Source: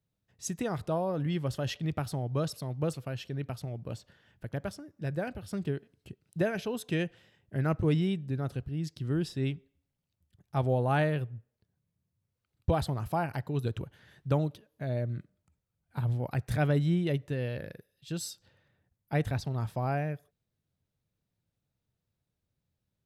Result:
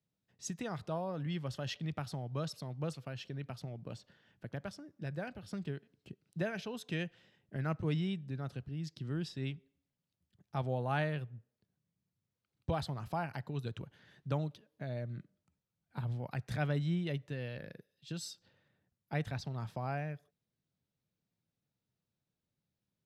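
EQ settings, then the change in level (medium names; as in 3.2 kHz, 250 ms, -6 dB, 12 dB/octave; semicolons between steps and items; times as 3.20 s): three-band isolator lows -16 dB, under 160 Hz, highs -13 dB, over 6.2 kHz; dynamic bell 320 Hz, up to -7 dB, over -44 dBFS, Q 0.7; tone controls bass +7 dB, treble +4 dB; -4.0 dB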